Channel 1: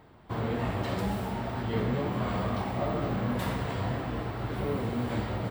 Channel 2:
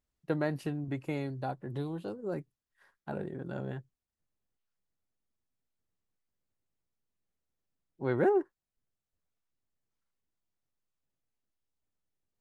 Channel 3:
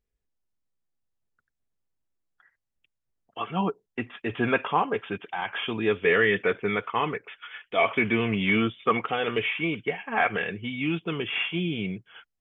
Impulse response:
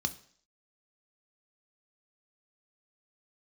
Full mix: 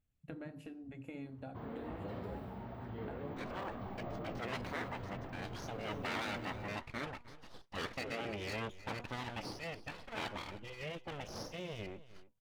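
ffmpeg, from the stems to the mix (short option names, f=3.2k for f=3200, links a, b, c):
-filter_complex "[0:a]equalizer=f=7.9k:t=o:w=1:g=-11.5,adelay=1250,volume=-12.5dB[a];[1:a]acompressor=threshold=-40dB:ratio=5,volume=1dB,asplit=2[b][c];[c]volume=-7dB[d];[2:a]bandreject=f=241:t=h:w=4,bandreject=f=482:t=h:w=4,bandreject=f=723:t=h:w=4,bandreject=f=964:t=h:w=4,aeval=exprs='abs(val(0))':c=same,volume=-8.5dB,asplit=2[e][f];[f]volume=-18dB[g];[3:a]atrim=start_sample=2205[h];[d][h]afir=irnorm=-1:irlink=0[i];[g]aecho=0:1:310:1[j];[a][b][e][i][j]amix=inputs=5:normalize=0,afftfilt=real='re*lt(hypot(re,im),0.0794)':imag='im*lt(hypot(re,im),0.0794)':win_size=1024:overlap=0.75,highshelf=f=2.1k:g=-8"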